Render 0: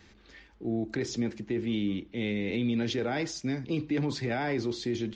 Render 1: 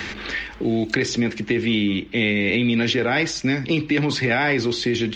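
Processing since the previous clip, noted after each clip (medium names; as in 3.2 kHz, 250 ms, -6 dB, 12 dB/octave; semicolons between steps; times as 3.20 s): peaking EQ 2.3 kHz +8.5 dB 1.9 oct; three bands compressed up and down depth 70%; trim +8 dB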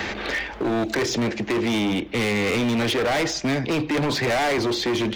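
peaking EQ 640 Hz +11 dB 1.3 oct; hard clipper -20 dBFS, distortion -7 dB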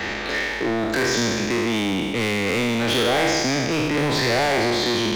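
spectral sustain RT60 2.08 s; trim -2 dB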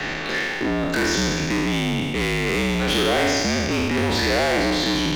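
whistle 2.8 kHz -41 dBFS; frequency shift -50 Hz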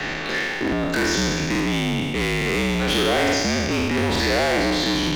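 crackling interface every 0.87 s, samples 2048, repeat, from 0.63 s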